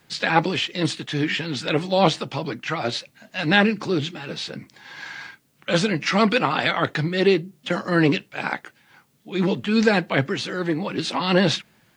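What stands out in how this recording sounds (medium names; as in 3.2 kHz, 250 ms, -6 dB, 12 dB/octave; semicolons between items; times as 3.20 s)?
tremolo triangle 0.64 Hz, depth 45%; a quantiser's noise floor 12-bit, dither triangular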